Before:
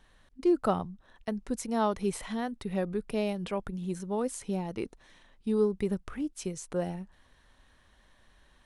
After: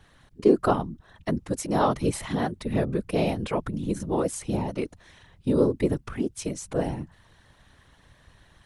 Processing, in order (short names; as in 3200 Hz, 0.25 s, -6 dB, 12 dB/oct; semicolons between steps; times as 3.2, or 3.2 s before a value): whisperiser; gain +5.5 dB